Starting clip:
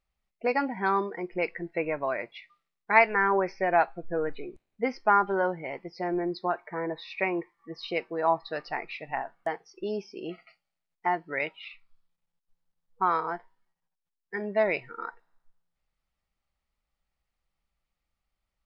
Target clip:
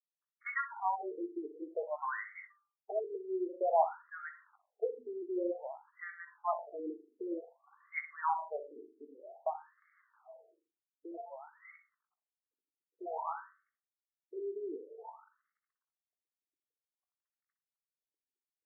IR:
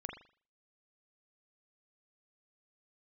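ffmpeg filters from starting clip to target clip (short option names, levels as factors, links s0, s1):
-filter_complex "[0:a]lowshelf=f=440:g=-7,asplit=2[s0][s1];[s1]acompressor=threshold=0.01:ratio=5,volume=0.794[s2];[s0][s2]amix=inputs=2:normalize=0,afreqshift=-18,acrusher=bits=9:dc=4:mix=0:aa=0.000001,asplit=2[s3][s4];[1:a]atrim=start_sample=2205,adelay=20[s5];[s4][s5]afir=irnorm=-1:irlink=0,volume=0.562[s6];[s3][s6]amix=inputs=2:normalize=0,afftfilt=real='re*between(b*sr/1024,310*pow(1600/310,0.5+0.5*sin(2*PI*0.53*pts/sr))/1.41,310*pow(1600/310,0.5+0.5*sin(2*PI*0.53*pts/sr))*1.41)':imag='im*between(b*sr/1024,310*pow(1600/310,0.5+0.5*sin(2*PI*0.53*pts/sr))/1.41,310*pow(1600/310,0.5+0.5*sin(2*PI*0.53*pts/sr))*1.41)':win_size=1024:overlap=0.75,volume=0.631"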